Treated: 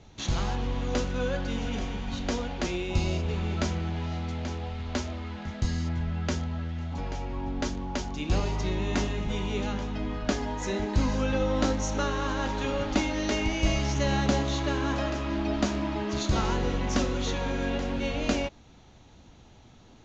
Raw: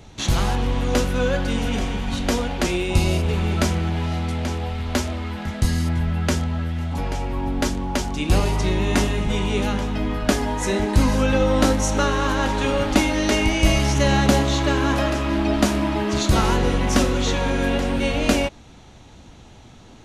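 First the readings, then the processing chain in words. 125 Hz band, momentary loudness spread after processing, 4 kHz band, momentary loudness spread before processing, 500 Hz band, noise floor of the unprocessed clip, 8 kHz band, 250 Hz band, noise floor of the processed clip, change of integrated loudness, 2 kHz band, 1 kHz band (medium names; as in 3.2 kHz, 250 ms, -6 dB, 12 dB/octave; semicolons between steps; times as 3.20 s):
-8.0 dB, 7 LU, -8.5 dB, 7 LU, -8.0 dB, -45 dBFS, -10.0 dB, -8.0 dB, -53 dBFS, -8.0 dB, -9.0 dB, -8.5 dB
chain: Chebyshev low-pass 6.9 kHz, order 5; trim -8 dB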